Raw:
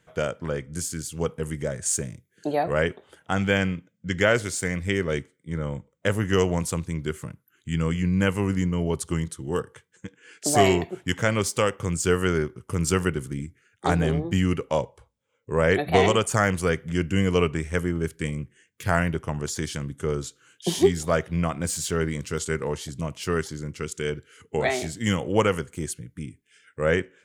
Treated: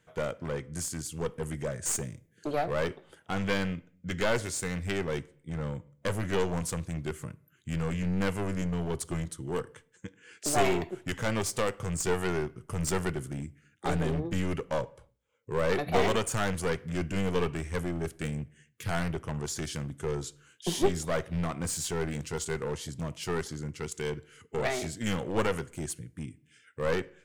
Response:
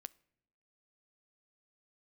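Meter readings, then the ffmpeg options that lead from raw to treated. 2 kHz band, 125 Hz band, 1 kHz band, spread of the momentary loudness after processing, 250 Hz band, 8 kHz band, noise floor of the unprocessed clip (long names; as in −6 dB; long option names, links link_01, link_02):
−7.5 dB, −6.5 dB, −6.0 dB, 10 LU, −7.0 dB, −5.0 dB, −69 dBFS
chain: -filter_complex "[0:a]aeval=exprs='clip(val(0),-1,0.0531)':channel_layout=same[link_01];[1:a]atrim=start_sample=2205,afade=type=out:start_time=0.37:duration=0.01,atrim=end_sample=16758[link_02];[link_01][link_02]afir=irnorm=-1:irlink=0,volume=2dB"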